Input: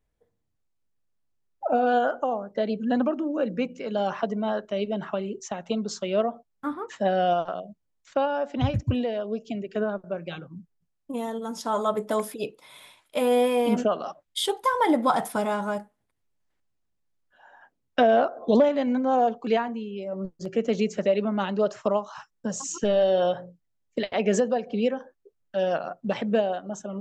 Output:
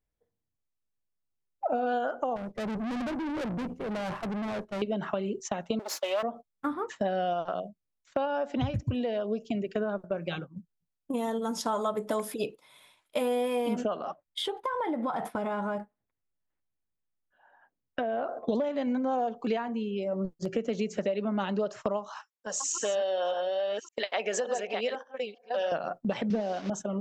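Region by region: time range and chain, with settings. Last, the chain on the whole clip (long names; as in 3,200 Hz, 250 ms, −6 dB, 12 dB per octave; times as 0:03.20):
0:02.36–0:04.82: variable-slope delta modulation 64 kbit/s + spectral tilt −3.5 dB per octave + tube saturation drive 34 dB, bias 0.5
0:05.79–0:06.23: lower of the sound and its delayed copy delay 3.5 ms + high-pass filter 450 Hz 24 dB per octave
0:13.99–0:18.29: bass and treble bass 0 dB, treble −15 dB + downward compressor 4 to 1, threshold −30 dBFS
0:22.16–0:25.72: delay that plays each chunk backwards 576 ms, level −5.5 dB + high-pass filter 620 Hz
0:26.30–0:26.70: linear delta modulator 32 kbit/s, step −38 dBFS + low shelf with overshoot 160 Hz −6.5 dB, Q 3
whole clip: noise gate −39 dBFS, range −11 dB; downward compressor, threshold −29 dBFS; level +2.5 dB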